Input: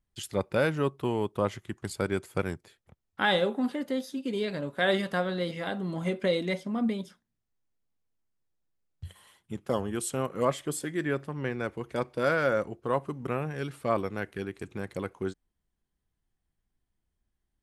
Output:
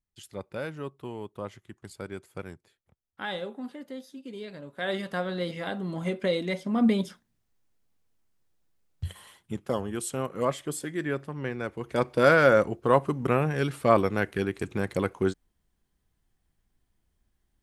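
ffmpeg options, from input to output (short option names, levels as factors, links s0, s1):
-af "volume=5.96,afade=t=in:st=4.65:d=0.77:silence=0.354813,afade=t=in:st=6.55:d=0.45:silence=0.398107,afade=t=out:st=9.06:d=0.69:silence=0.375837,afade=t=in:st=11.75:d=0.4:silence=0.421697"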